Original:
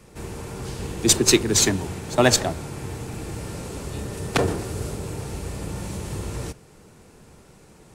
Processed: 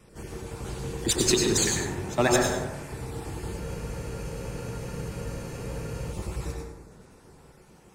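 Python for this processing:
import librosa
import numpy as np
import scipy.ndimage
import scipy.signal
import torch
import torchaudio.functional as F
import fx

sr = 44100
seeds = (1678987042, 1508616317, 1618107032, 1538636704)

p1 = fx.spec_dropout(x, sr, seeds[0], share_pct=30)
p2 = 10.0 ** (-18.0 / 20.0) * np.tanh(p1 / 10.0 ** (-18.0 / 20.0))
p3 = p1 + (p2 * librosa.db_to_amplitude(-9.0))
p4 = fx.wow_flutter(p3, sr, seeds[1], rate_hz=2.1, depth_cents=15.0)
p5 = p4 + fx.echo_single(p4, sr, ms=98, db=-10.0, dry=0)
p6 = fx.rev_plate(p5, sr, seeds[2], rt60_s=0.95, hf_ratio=0.4, predelay_ms=80, drr_db=0.5)
p7 = fx.spec_freeze(p6, sr, seeds[3], at_s=3.63, hold_s=2.48)
y = p7 * librosa.db_to_amplitude(-7.5)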